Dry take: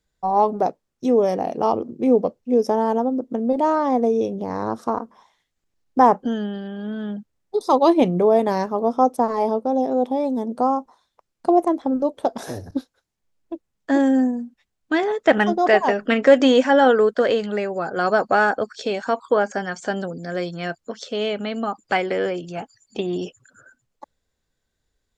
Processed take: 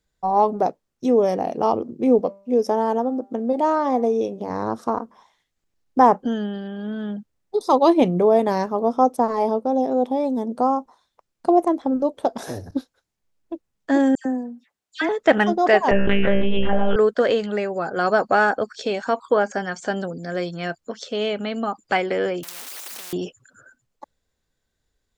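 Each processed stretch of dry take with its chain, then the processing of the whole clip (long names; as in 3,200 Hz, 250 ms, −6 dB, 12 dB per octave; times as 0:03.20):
0:02.19–0:04.50: low-shelf EQ 120 Hz −11.5 dB + hum removal 197.1 Hz, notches 13
0:14.15–0:15.09: high-pass filter 420 Hz 6 dB per octave + all-pass dispersion lows, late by 103 ms, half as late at 2,300 Hz
0:15.91–0:16.96: one-pitch LPC vocoder at 8 kHz 200 Hz + tuned comb filter 65 Hz, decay 0.37 s, mix 100% + envelope flattener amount 100%
0:22.43–0:23.13: converter with a step at zero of −32 dBFS + high-pass filter 570 Hz 24 dB per octave + every bin compressed towards the loudest bin 10 to 1
whole clip: no processing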